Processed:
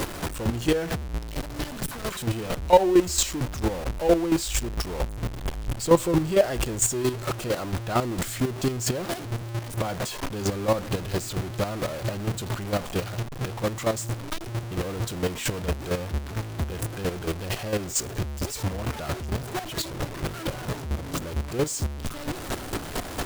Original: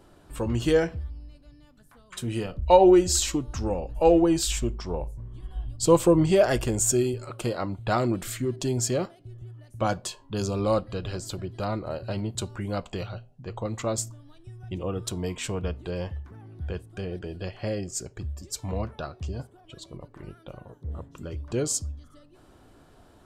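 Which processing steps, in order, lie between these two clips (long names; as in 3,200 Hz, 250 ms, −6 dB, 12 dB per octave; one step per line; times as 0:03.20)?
converter with a step at zero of −21 dBFS
square-wave tremolo 4.4 Hz, depth 65%, duty 20%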